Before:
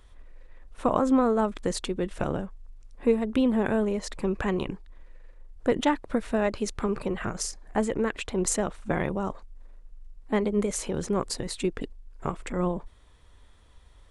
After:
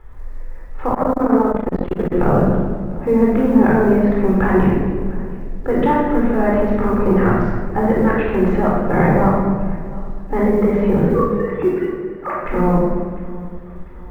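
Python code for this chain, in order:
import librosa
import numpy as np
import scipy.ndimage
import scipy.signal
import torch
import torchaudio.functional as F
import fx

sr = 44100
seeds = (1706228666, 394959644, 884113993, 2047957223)

p1 = fx.sine_speech(x, sr, at=(11.14, 12.45))
p2 = scipy.signal.sosfilt(scipy.signal.butter(4, 2000.0, 'lowpass', fs=sr, output='sos'), p1)
p3 = fx.peak_eq(p2, sr, hz=820.0, db=3.5, octaves=0.56)
p4 = fx.over_compress(p3, sr, threshold_db=-27.0, ratio=-0.5)
p5 = p3 + F.gain(torch.from_numpy(p4), 1.5).numpy()
p6 = fx.quant_companded(p5, sr, bits=8)
p7 = p6 + fx.echo_feedback(p6, sr, ms=700, feedback_pct=51, wet_db=-20.5, dry=0)
p8 = fx.room_shoebox(p7, sr, seeds[0], volume_m3=1500.0, walls='mixed', distance_m=4.1)
p9 = fx.transformer_sat(p8, sr, knee_hz=340.0, at=(0.94, 2.12))
y = F.gain(torch.from_numpy(p9), -2.0).numpy()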